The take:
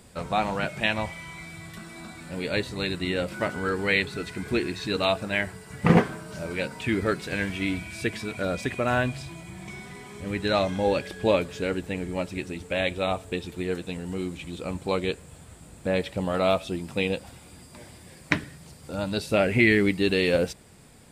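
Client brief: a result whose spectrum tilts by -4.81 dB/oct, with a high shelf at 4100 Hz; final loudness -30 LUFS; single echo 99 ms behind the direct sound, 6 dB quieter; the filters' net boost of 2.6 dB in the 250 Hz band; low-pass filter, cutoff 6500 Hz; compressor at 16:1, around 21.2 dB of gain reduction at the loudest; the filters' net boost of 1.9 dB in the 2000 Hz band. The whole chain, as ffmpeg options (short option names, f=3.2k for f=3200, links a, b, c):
-af "lowpass=6.5k,equalizer=f=250:t=o:g=3.5,equalizer=f=2k:t=o:g=3.5,highshelf=f=4.1k:g=-5.5,acompressor=threshold=-33dB:ratio=16,aecho=1:1:99:0.501,volume=8dB"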